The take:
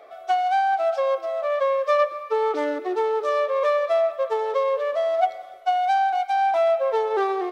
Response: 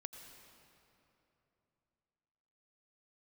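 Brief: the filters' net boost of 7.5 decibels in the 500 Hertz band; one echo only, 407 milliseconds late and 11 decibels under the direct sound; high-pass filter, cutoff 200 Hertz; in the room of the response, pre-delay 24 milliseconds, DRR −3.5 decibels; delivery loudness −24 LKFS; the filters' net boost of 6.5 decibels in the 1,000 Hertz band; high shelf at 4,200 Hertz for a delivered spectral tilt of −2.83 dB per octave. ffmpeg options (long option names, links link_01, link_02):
-filter_complex "[0:a]highpass=200,equalizer=frequency=500:width_type=o:gain=7.5,equalizer=frequency=1000:width_type=o:gain=5.5,highshelf=frequency=4200:gain=3.5,aecho=1:1:407:0.282,asplit=2[link_01][link_02];[1:a]atrim=start_sample=2205,adelay=24[link_03];[link_02][link_03]afir=irnorm=-1:irlink=0,volume=7.5dB[link_04];[link_01][link_04]amix=inputs=2:normalize=0,volume=-14.5dB"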